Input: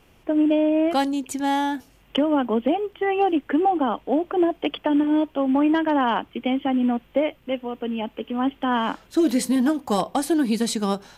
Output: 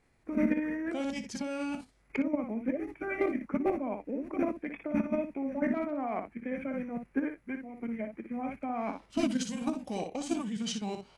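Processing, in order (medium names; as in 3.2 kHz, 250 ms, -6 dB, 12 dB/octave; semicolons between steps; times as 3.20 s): level held to a coarse grid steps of 9 dB; early reflections 22 ms -17.5 dB, 59 ms -7 dB; formant shift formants -5 st; trim -7 dB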